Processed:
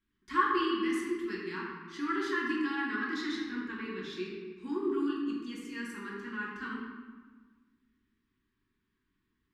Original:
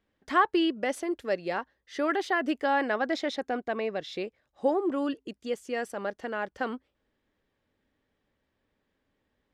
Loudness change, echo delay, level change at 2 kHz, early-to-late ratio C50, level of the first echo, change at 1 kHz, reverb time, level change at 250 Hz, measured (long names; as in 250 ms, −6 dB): −4.0 dB, no echo audible, −2.5 dB, 0.5 dB, no echo audible, −5.0 dB, 1.4 s, −1.5 dB